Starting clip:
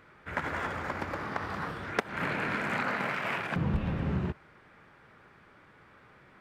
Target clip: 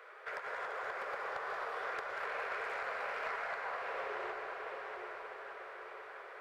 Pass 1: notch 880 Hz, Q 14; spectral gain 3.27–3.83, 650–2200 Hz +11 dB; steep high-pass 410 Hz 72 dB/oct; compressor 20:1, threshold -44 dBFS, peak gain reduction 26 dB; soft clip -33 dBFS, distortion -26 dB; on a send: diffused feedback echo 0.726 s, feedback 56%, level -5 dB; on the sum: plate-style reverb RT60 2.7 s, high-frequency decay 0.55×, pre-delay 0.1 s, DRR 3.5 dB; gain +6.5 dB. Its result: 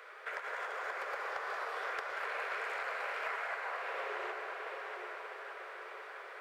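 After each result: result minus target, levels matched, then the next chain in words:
soft clip: distortion -8 dB; 4000 Hz band +2.0 dB
notch 880 Hz, Q 14; spectral gain 3.27–3.83, 650–2200 Hz +11 dB; steep high-pass 410 Hz 72 dB/oct; compressor 20:1, threshold -44 dBFS, peak gain reduction 26 dB; soft clip -39.5 dBFS, distortion -18 dB; on a send: diffused feedback echo 0.726 s, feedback 56%, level -5 dB; on the sum: plate-style reverb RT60 2.7 s, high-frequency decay 0.55×, pre-delay 0.1 s, DRR 3.5 dB; gain +6.5 dB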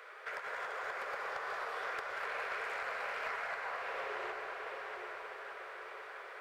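4000 Hz band +2.5 dB
notch 880 Hz, Q 14; spectral gain 3.27–3.83, 650–2200 Hz +11 dB; steep high-pass 410 Hz 72 dB/oct; high shelf 2100 Hz -7.5 dB; compressor 20:1, threshold -44 dBFS, peak gain reduction 24 dB; soft clip -39.5 dBFS, distortion -18 dB; on a send: diffused feedback echo 0.726 s, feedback 56%, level -5 dB; on the sum: plate-style reverb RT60 2.7 s, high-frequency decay 0.55×, pre-delay 0.1 s, DRR 3.5 dB; gain +6.5 dB

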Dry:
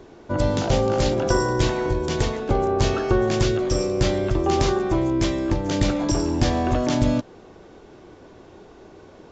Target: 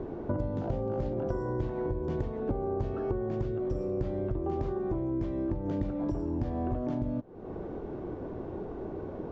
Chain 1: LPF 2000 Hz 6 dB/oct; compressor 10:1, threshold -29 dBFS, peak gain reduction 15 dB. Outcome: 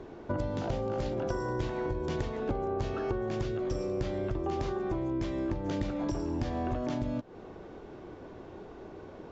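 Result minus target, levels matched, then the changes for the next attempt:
2000 Hz band +7.5 dB
add after LPF: tilt shelf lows +9.5 dB, about 1500 Hz

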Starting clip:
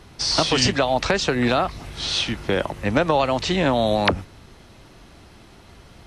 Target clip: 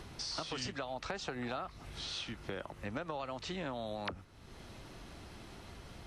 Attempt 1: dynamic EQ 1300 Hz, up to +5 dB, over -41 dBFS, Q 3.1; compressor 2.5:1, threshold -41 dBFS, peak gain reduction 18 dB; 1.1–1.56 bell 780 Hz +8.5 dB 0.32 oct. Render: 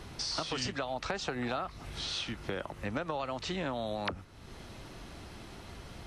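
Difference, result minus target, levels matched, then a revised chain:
compressor: peak gain reduction -5 dB
dynamic EQ 1300 Hz, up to +5 dB, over -41 dBFS, Q 3.1; compressor 2.5:1, threshold -49 dBFS, peak gain reduction 23 dB; 1.1–1.56 bell 780 Hz +8.5 dB 0.32 oct

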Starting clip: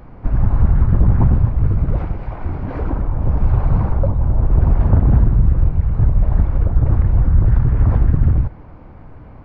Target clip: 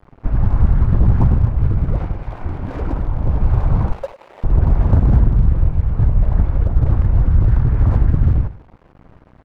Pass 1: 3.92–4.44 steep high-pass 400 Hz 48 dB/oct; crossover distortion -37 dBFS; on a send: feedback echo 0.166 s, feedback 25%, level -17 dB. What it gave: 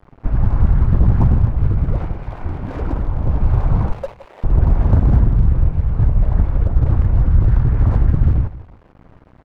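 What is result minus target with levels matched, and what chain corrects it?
echo 64 ms late
3.92–4.44 steep high-pass 400 Hz 48 dB/oct; crossover distortion -37 dBFS; on a send: feedback echo 0.102 s, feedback 25%, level -17 dB

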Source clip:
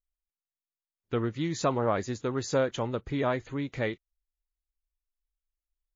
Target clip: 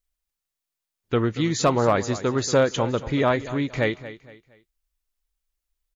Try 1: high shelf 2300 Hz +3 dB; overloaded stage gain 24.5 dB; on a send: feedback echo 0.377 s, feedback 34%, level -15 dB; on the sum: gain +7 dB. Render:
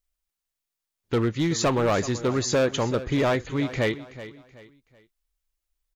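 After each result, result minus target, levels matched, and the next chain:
echo 0.145 s late; overloaded stage: distortion +16 dB
high shelf 2300 Hz +3 dB; overloaded stage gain 24.5 dB; on a send: feedback echo 0.232 s, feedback 34%, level -15 dB; on the sum: gain +7 dB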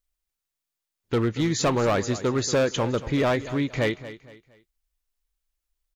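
overloaded stage: distortion +16 dB
high shelf 2300 Hz +3 dB; overloaded stage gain 17.5 dB; on a send: feedback echo 0.232 s, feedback 34%, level -15 dB; on the sum: gain +7 dB

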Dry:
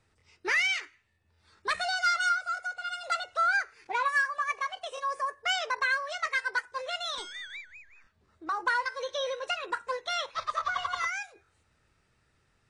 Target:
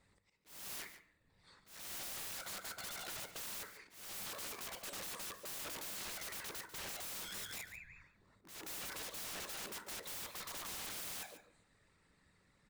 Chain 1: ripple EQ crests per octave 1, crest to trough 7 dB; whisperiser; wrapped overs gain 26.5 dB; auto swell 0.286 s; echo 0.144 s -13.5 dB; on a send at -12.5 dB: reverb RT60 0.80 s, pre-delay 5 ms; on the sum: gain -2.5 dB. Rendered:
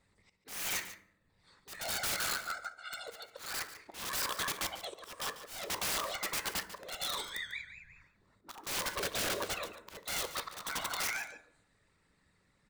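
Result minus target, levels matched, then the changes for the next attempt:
wrapped overs: distortion -20 dB
change: wrapped overs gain 38 dB

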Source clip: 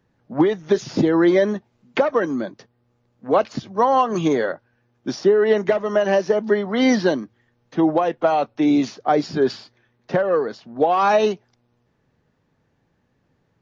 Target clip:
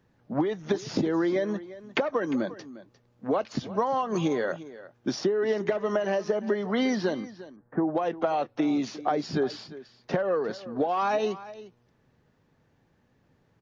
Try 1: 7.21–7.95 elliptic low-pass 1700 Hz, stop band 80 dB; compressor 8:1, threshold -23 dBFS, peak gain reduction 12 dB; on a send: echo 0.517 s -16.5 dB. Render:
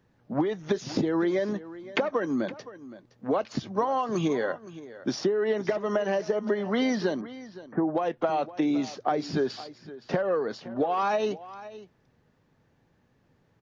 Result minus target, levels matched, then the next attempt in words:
echo 0.165 s late
7.21–7.95 elliptic low-pass 1700 Hz, stop band 80 dB; compressor 8:1, threshold -23 dBFS, peak gain reduction 12 dB; on a send: echo 0.352 s -16.5 dB

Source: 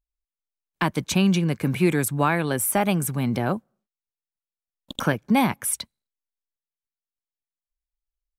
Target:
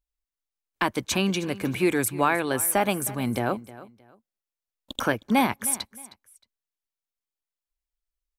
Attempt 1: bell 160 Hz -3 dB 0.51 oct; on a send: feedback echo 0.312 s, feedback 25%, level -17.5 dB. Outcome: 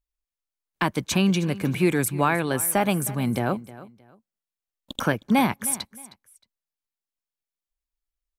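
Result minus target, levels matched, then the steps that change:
125 Hz band +5.0 dB
change: bell 160 Hz -14 dB 0.51 oct

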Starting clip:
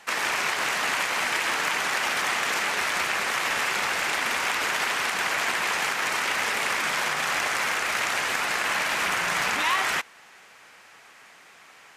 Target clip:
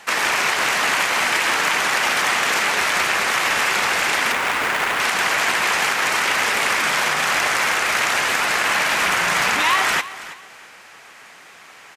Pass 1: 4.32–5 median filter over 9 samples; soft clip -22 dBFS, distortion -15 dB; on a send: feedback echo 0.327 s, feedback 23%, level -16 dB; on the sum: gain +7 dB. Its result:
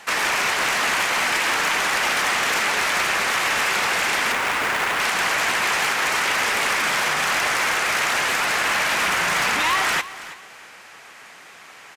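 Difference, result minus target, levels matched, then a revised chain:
soft clip: distortion +14 dB
4.32–5 median filter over 9 samples; soft clip -12.5 dBFS, distortion -29 dB; on a send: feedback echo 0.327 s, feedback 23%, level -16 dB; on the sum: gain +7 dB

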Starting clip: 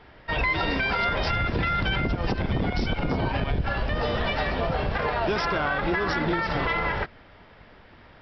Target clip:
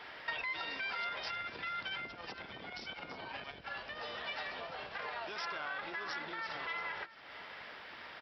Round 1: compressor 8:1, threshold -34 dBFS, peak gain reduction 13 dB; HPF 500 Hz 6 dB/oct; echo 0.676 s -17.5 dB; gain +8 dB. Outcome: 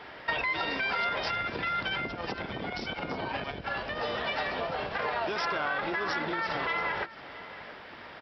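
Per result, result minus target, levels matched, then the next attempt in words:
compressor: peak gain reduction -6 dB; 500 Hz band +4.0 dB
compressor 8:1, threshold -41 dBFS, peak gain reduction 19.5 dB; HPF 500 Hz 6 dB/oct; echo 0.676 s -17.5 dB; gain +8 dB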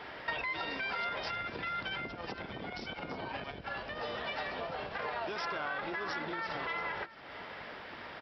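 500 Hz band +4.0 dB
compressor 8:1, threshold -41 dBFS, peak gain reduction 19.5 dB; HPF 1600 Hz 6 dB/oct; echo 0.676 s -17.5 dB; gain +8 dB

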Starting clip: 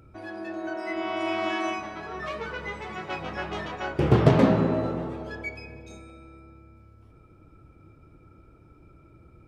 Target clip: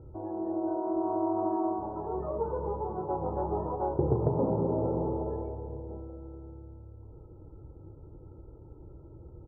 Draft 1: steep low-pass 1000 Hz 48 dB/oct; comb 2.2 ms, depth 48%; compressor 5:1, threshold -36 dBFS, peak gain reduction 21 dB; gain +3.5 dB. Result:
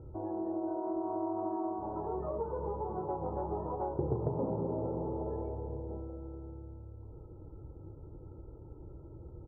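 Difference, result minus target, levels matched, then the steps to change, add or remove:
compressor: peak gain reduction +6 dB
change: compressor 5:1, threshold -28.5 dBFS, peak gain reduction 15 dB

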